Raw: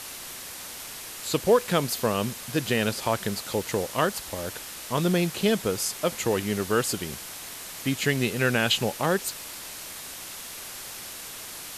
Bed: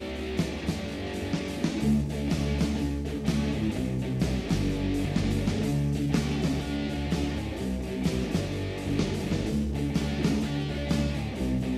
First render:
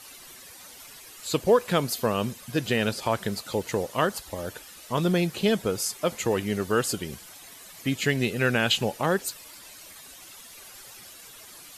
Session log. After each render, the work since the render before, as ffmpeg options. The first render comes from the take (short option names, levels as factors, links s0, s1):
-af "afftdn=nr=12:nf=-40"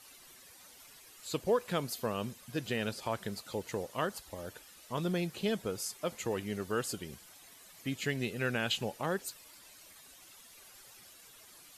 -af "volume=0.335"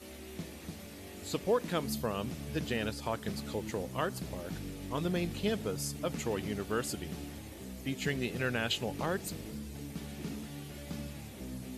-filter_complex "[1:a]volume=0.188[s0];[0:a][s0]amix=inputs=2:normalize=0"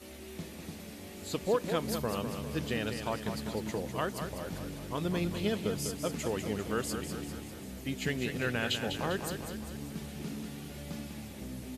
-af "aecho=1:1:199|398|597|796|995|1194|1393:0.422|0.228|0.123|0.0664|0.0359|0.0194|0.0105"